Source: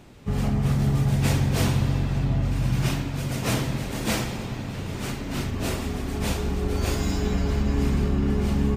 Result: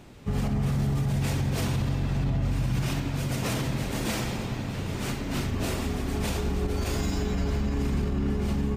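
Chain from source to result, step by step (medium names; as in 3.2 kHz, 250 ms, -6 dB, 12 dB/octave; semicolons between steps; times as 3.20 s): peak limiter -19 dBFS, peak gain reduction 8 dB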